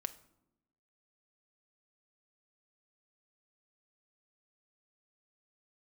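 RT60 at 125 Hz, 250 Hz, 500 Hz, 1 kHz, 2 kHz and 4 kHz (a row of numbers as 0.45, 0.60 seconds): 1.1, 1.2, 0.95, 0.80, 0.55, 0.45 seconds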